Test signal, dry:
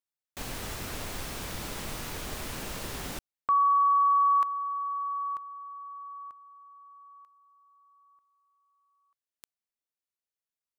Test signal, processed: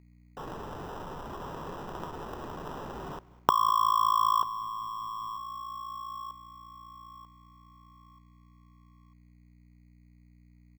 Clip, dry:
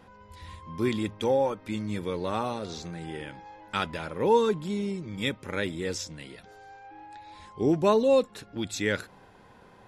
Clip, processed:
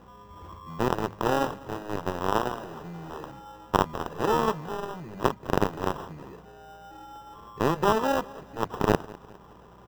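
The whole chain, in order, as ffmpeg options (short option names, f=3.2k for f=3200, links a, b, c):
-filter_complex "[0:a]aeval=exprs='val(0)+0.00178*(sin(2*PI*60*n/s)+sin(2*PI*2*60*n/s)/2+sin(2*PI*3*60*n/s)/3+sin(2*PI*4*60*n/s)/4+sin(2*PI*5*60*n/s)/5)':c=same,acompressor=threshold=-27dB:ratio=12:attack=5.1:release=31:knee=6:detection=peak,acrusher=samples=20:mix=1:aa=0.000001,aeval=exprs='0.2*(cos(1*acos(clip(val(0)/0.2,-1,1)))-cos(1*PI/2))+0.0158*(cos(5*acos(clip(val(0)/0.2,-1,1)))-cos(5*PI/2))+0.0501*(cos(7*acos(clip(val(0)/0.2,-1,1)))-cos(7*PI/2))':c=same,equalizer=f=160:t=o:w=0.67:g=5,equalizer=f=400:t=o:w=0.67:g=6,equalizer=f=1k:t=o:w=0.67:g=8,equalizer=f=4k:t=o:w=0.67:g=-4,equalizer=f=10k:t=o:w=0.67:g=-12,asplit=2[a][b];[b]aecho=0:1:203|406|609:0.0841|0.0395|0.0186[c];[a][c]amix=inputs=2:normalize=0,volume=6.5dB"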